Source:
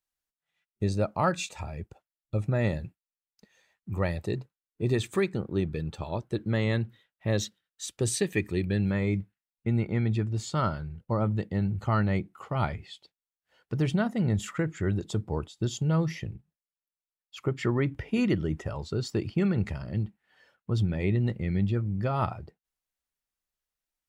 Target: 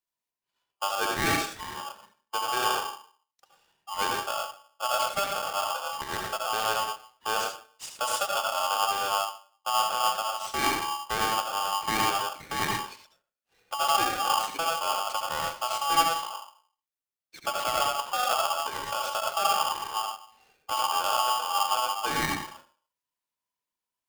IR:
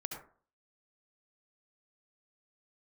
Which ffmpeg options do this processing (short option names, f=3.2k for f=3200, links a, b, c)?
-filter_complex "[1:a]atrim=start_sample=2205[a];[0:a][a]afir=irnorm=-1:irlink=0,aeval=exprs='val(0)*sgn(sin(2*PI*990*n/s))':c=same"